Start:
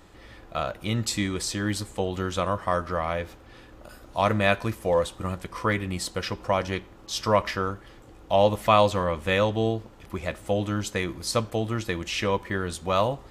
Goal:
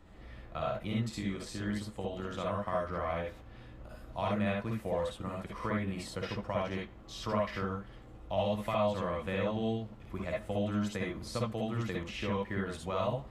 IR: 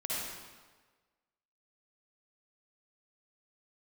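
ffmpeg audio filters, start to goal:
-filter_complex "[0:a]bass=f=250:g=7,treble=f=4000:g=-8,acrossover=split=160|1500[s0][s1][s2];[s0]acompressor=threshold=0.0158:ratio=4[s3];[s1]acompressor=threshold=0.0562:ratio=4[s4];[s2]acompressor=threshold=0.0178:ratio=4[s5];[s3][s4][s5]amix=inputs=3:normalize=0,asplit=3[s6][s7][s8];[s6]afade=t=out:st=0.95:d=0.02[s9];[s7]tremolo=f=150:d=0.519,afade=t=in:st=0.95:d=0.02,afade=t=out:st=2.39:d=0.02[s10];[s8]afade=t=in:st=2.39:d=0.02[s11];[s9][s10][s11]amix=inputs=3:normalize=0[s12];[1:a]atrim=start_sample=2205,atrim=end_sample=3528[s13];[s12][s13]afir=irnorm=-1:irlink=0,volume=0.501"

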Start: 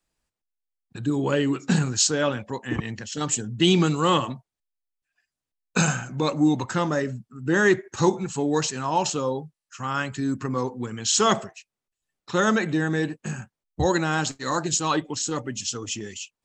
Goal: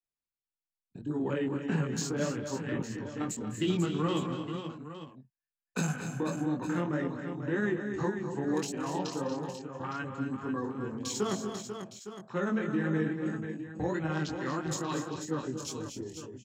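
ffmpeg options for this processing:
-filter_complex "[0:a]afwtdn=0.02,tremolo=f=19:d=0.51,acrossover=split=130|420|1600|7000[s0][s1][s2][s3][s4];[s0]acompressor=threshold=0.00398:ratio=4[s5];[s1]acompressor=threshold=0.0562:ratio=4[s6];[s2]acompressor=threshold=0.0141:ratio=4[s7];[s3]acompressor=threshold=0.01:ratio=4[s8];[s4]acompressor=threshold=0.01:ratio=4[s9];[s5][s6][s7][s8][s9]amix=inputs=5:normalize=0,flanger=delay=18.5:depth=5.2:speed=1.7,asplit=2[s10][s11];[s11]aecho=0:1:203|235|245|264|492|861:0.126|0.316|0.119|0.211|0.376|0.237[s12];[s10][s12]amix=inputs=2:normalize=0"

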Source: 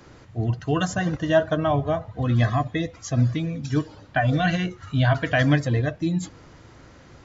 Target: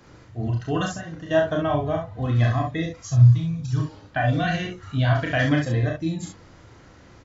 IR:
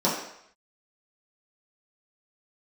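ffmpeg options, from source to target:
-filter_complex "[0:a]asettb=1/sr,asplit=3[s0][s1][s2];[s0]atrim=end=0.884[s3];[s1]atrim=start=0.88:end=1.31,asetpts=PTS-STARTPTS,afade=t=in:d=0.004:c=qsin,afade=t=out:st=0.426:d=0.004:c=qsin,acompressor=threshold=0.0251:ratio=4[s4];[s2]atrim=start=1.306[s5];[s3][s4]acrossfade=d=0.004:c1=hsin:c2=qsin[s6];[s6][s5]acrossfade=d=0.004:c1=qsin:c2=hsin,asplit=3[s7][s8][s9];[s7]afade=t=out:st=3.06:d=0.02[s10];[s8]equalizer=f=125:t=o:w=1:g=10,equalizer=f=250:t=o:w=1:g=-12,equalizer=f=500:t=o:w=1:g=-10,equalizer=f=1000:t=o:w=1:g=4,equalizer=f=2000:t=o:w=1:g=-10,afade=t=in:st=3.06:d=0.02,afade=t=out:st=3.79:d=0.02[s11];[s9]afade=t=in:st=3.79:d=0.02[s12];[s10][s11][s12]amix=inputs=3:normalize=0,aecho=1:1:31|41|67:0.562|0.501|0.531,volume=0.668"

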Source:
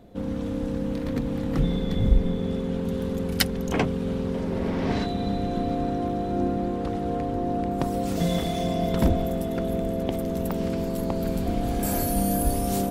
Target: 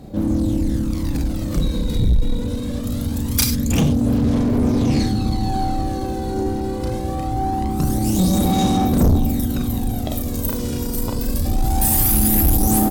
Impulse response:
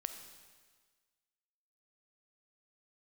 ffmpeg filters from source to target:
-filter_complex "[0:a]lowshelf=f=61:g=-6,asplit=2[s0][s1];[s1]adelay=37,volume=0.708[s2];[s0][s2]amix=inputs=2:normalize=0,aecho=1:1:367|734:0.0708|0.0184,aphaser=in_gain=1:out_gain=1:delay=2.3:decay=0.54:speed=0.23:type=sinusoidal,bass=f=250:g=10,treble=f=4000:g=15[s3];[1:a]atrim=start_sample=2205,atrim=end_sample=3528,asetrate=33957,aresample=44100[s4];[s3][s4]afir=irnorm=-1:irlink=0,asetrate=48091,aresample=44100,atempo=0.917004,asoftclip=type=tanh:threshold=0.299"

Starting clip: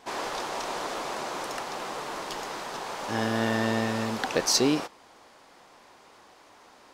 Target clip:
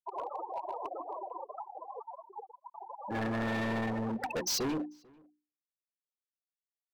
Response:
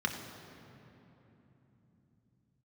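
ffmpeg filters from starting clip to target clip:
-filter_complex "[0:a]afftfilt=real='re*gte(hypot(re,im),0.0891)':imag='im*gte(hypot(re,im),0.0891)':win_size=1024:overlap=0.75,highshelf=f=4200:g=9.5,bandreject=f=60:t=h:w=6,bandreject=f=120:t=h:w=6,bandreject=f=180:t=h:w=6,bandreject=f=240:t=h:w=6,bandreject=f=300:t=h:w=6,bandreject=f=360:t=h:w=6,asoftclip=type=hard:threshold=0.0299,asplit=2[s0][s1];[s1]adelay=443.1,volume=0.0447,highshelf=f=4000:g=-9.97[s2];[s0][s2]amix=inputs=2:normalize=0"

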